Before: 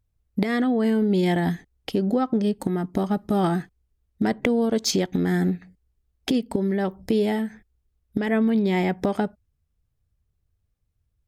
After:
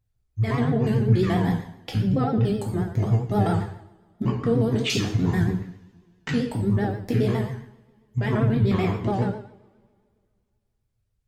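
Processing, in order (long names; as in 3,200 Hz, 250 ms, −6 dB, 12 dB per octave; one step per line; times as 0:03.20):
pitch shifter gated in a rhythm −10 semitones, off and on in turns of 72 ms
coupled-rooms reverb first 0.62 s, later 2.3 s, from −26 dB, DRR −2.5 dB
pitch vibrato 7.5 Hz 78 cents
level −4 dB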